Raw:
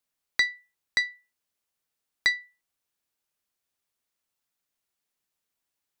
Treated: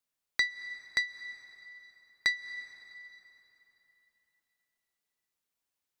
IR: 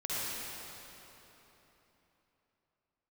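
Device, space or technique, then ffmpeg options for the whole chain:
ducked reverb: -filter_complex "[0:a]asplit=3[s0][s1][s2];[1:a]atrim=start_sample=2205[s3];[s1][s3]afir=irnorm=-1:irlink=0[s4];[s2]apad=whole_len=264638[s5];[s4][s5]sidechaincompress=threshold=0.0112:ratio=12:attack=31:release=139,volume=0.158[s6];[s0][s6]amix=inputs=2:normalize=0,volume=0.596"

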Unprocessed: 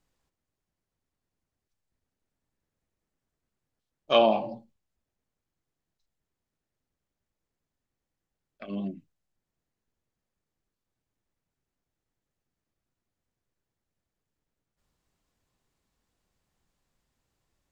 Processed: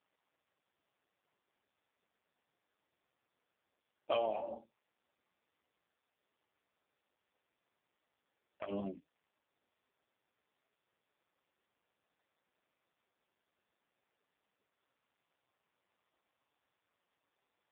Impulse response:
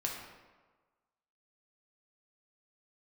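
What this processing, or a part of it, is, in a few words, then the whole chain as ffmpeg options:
voicemail: -filter_complex "[0:a]asplit=3[s0][s1][s2];[s0]afade=t=out:st=4.11:d=0.02[s3];[s1]adynamicequalizer=threshold=0.00794:dfrequency=430:dqfactor=6.8:tfrequency=430:tqfactor=6.8:attack=5:release=100:ratio=0.375:range=2:mode=boostabove:tftype=bell,afade=t=in:st=4.11:d=0.02,afade=t=out:st=4.57:d=0.02[s4];[s2]afade=t=in:st=4.57:d=0.02[s5];[s3][s4][s5]amix=inputs=3:normalize=0,highpass=440,lowpass=2600,acompressor=threshold=0.0178:ratio=8,volume=1.68" -ar 8000 -c:a libopencore_amrnb -b:a 5150

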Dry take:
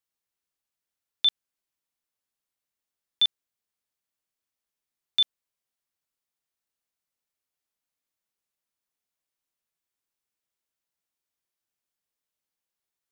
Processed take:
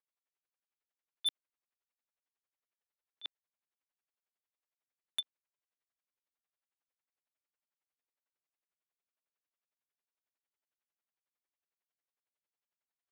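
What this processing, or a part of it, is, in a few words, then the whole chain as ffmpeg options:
helicopter radio: -af "highpass=360,lowpass=2600,aeval=exprs='val(0)*pow(10,-32*(0.5-0.5*cos(2*PI*11*n/s))/20)':c=same,asoftclip=type=hard:threshold=0.0355,volume=1.19"

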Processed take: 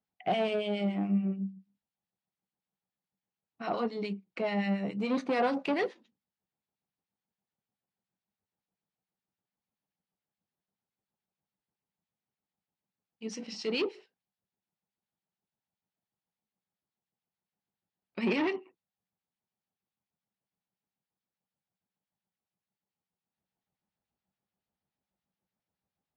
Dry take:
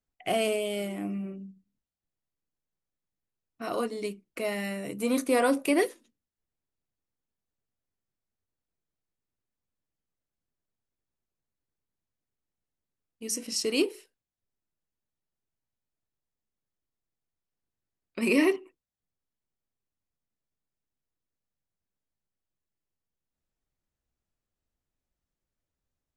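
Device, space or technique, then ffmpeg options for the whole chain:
guitar amplifier with harmonic tremolo: -filter_complex "[0:a]acrossover=split=1300[s0][s1];[s0]aeval=exprs='val(0)*(1-0.7/2+0.7/2*cos(2*PI*7*n/s))':c=same[s2];[s1]aeval=exprs='val(0)*(1-0.7/2-0.7/2*cos(2*PI*7*n/s))':c=same[s3];[s2][s3]amix=inputs=2:normalize=0,asoftclip=type=tanh:threshold=0.0501,highpass=110,equalizer=f=190:t=q:w=4:g=9,equalizer=f=300:t=q:w=4:g=-3,equalizer=f=820:t=q:w=4:g=8,lowpass=f=4600:w=0.5412,lowpass=f=4600:w=1.3066,volume=1.26"

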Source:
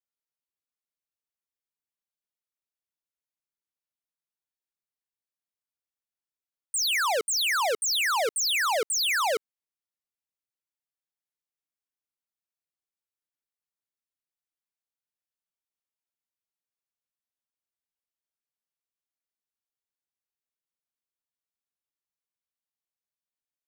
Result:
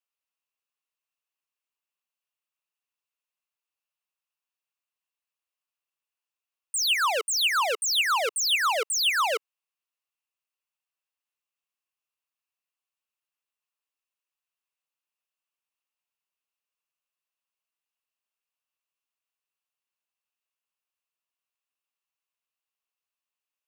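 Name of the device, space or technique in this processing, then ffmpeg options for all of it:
laptop speaker: -af "highpass=f=420:w=0.5412,highpass=f=420:w=1.3066,equalizer=f=1100:t=o:w=0.49:g=7.5,equalizer=f=2700:t=o:w=0.29:g=12,alimiter=limit=0.126:level=0:latency=1:release=113"

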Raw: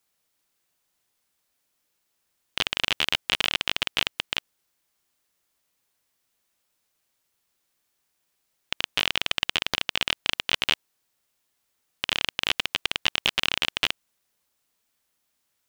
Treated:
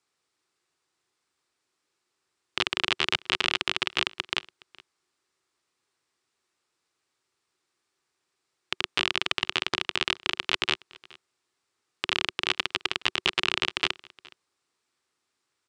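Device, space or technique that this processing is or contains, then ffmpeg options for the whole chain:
car door speaker: -af "highpass=89,equalizer=f=200:t=q:w=4:g=-7,equalizer=f=370:t=q:w=4:g=8,equalizer=f=610:t=q:w=4:g=-5,equalizer=f=1200:t=q:w=4:g=4,equalizer=f=3100:t=q:w=4:g=-3,equalizer=f=6400:t=q:w=4:g=-4,lowpass=f=8100:w=0.5412,lowpass=f=8100:w=1.3066,aecho=1:1:418:0.0631"

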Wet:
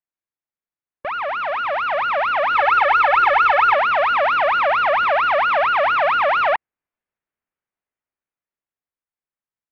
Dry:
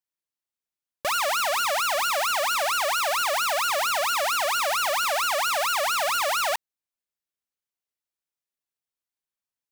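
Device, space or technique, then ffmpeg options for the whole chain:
action camera in a waterproof case: -filter_complex "[0:a]asettb=1/sr,asplit=3[s0][s1][s2];[s0]atrim=end=2.554[s3];[s1]atrim=start=2.55:end=3.75,asetpts=PTS-STARTPTS,afade=t=in:d=0.004:c=qsin,afade=t=out:st=1.196:d=0.004:c=qsin,aecho=1:1:2.3:0.96,atrim=end_sample=52920[s4];[s2]atrim=start=3.746[s5];[s3][s4]acrossfade=d=0.004:c1=hsin:c2=qsin[s6];[s6][s5]acrossfade=d=0.004:c1=qsin:c2=hsin,lowpass=f=2300:w=0.5412,lowpass=f=2300:w=1.3066,dynaudnorm=f=360:g=11:m=2.82" -ar 22050 -c:a aac -b:a 48k

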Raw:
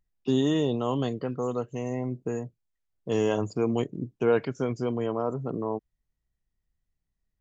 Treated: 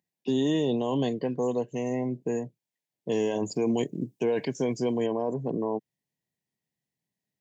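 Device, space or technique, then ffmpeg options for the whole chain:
PA system with an anti-feedback notch: -filter_complex "[0:a]highpass=f=140:w=0.5412,highpass=f=140:w=1.3066,asuperstop=centerf=1300:order=4:qfactor=2.2,alimiter=limit=0.0944:level=0:latency=1:release=21,asettb=1/sr,asplit=3[s0][s1][s2];[s0]atrim=end=3.454[s3];[s1]atrim=start=3.45:end=5.07,asetpts=PTS-STARTPTS,afade=t=in:d=0.004:c=qsin,afade=t=out:st=1.616:d=0.004:c=qsin,highshelf=f=5300:g=11.5[s4];[s2]atrim=start=5.066[s5];[s3][s4]acrossfade=d=0.004:c1=hsin:c2=qsin[s6];[s6][s5]acrossfade=d=0.004:c1=qsin:c2=hsin,volume=1.33"

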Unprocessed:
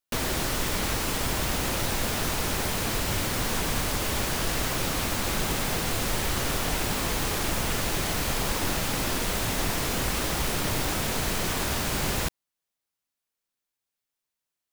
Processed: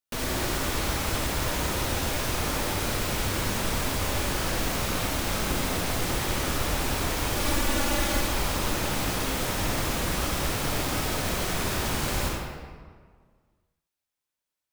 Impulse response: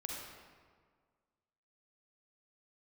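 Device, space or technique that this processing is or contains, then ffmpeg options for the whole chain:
stairwell: -filter_complex "[0:a]asettb=1/sr,asplit=3[s0][s1][s2];[s0]atrim=end=7.364[s3];[s1]atrim=start=7.36:end=8.21,asetpts=PTS-STARTPTS,afade=t=in:d=0.004:c=qsin,afade=t=out:st=0.846:d=0.004:c=qsin,aecho=1:1:3.5:0.81,atrim=end_sample=37485[s4];[s2]atrim=start=8.206[s5];[s3][s4]acrossfade=d=0.004:c1=hsin:c2=qsin[s6];[s6][s5]acrossfade=d=0.004:c1=qsin:c2=hsin[s7];[1:a]atrim=start_sample=2205[s8];[s7][s8]afir=irnorm=-1:irlink=0"

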